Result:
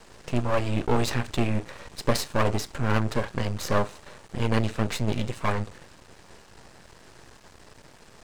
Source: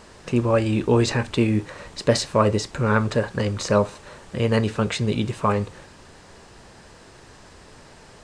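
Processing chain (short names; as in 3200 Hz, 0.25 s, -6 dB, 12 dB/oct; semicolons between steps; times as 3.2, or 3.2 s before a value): half-wave rectifier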